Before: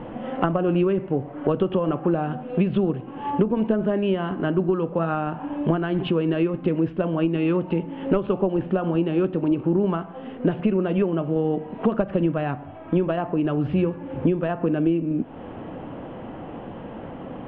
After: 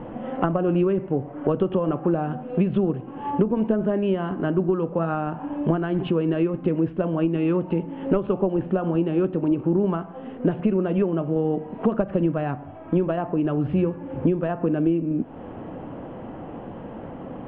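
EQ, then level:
high-shelf EQ 2,800 Hz −10 dB
0.0 dB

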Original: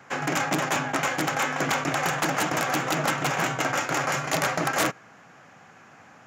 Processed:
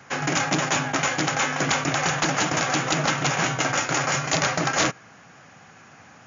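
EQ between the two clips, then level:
linear-phase brick-wall low-pass 7,100 Hz
low-shelf EQ 140 Hz +9 dB
high-shelf EQ 3,400 Hz +9.5 dB
0.0 dB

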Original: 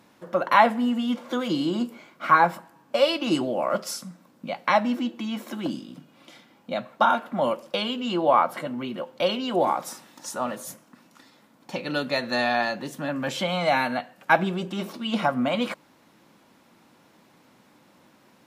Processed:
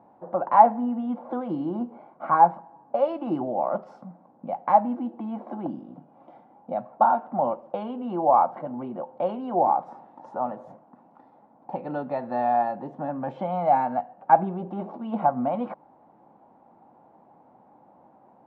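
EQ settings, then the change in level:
dynamic equaliser 610 Hz, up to −6 dB, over −35 dBFS, Q 0.86
low-pass with resonance 790 Hz, resonance Q 5.2
−2.5 dB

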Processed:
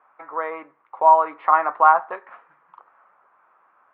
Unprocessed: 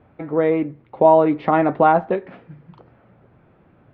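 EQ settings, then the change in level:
high-pass with resonance 1,100 Hz, resonance Q 3.7
low-pass filter 1,800 Hz 12 dB per octave
−1.5 dB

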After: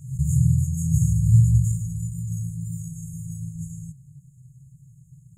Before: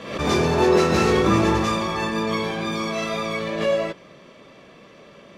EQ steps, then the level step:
linear-phase brick-wall band-stop 160–6,500 Hz
parametric band 130 Hz +11.5 dB 0.61 octaves
+5.0 dB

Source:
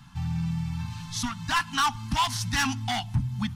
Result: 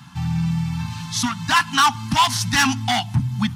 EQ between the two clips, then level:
high-pass filter 110 Hz 12 dB per octave
+8.5 dB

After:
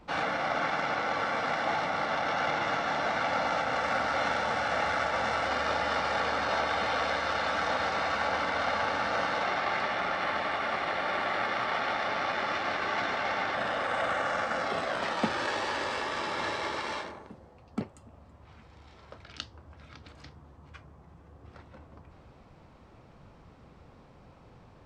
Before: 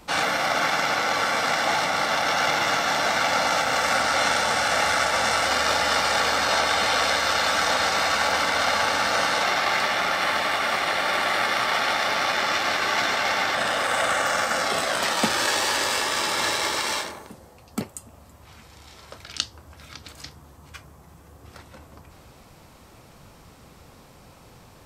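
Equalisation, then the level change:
head-to-tape spacing loss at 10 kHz 25 dB
−3.5 dB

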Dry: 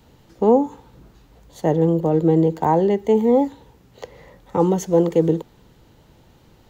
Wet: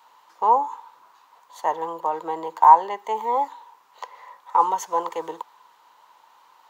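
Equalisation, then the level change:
high-pass with resonance 1,000 Hz, resonance Q 7.5
−2.5 dB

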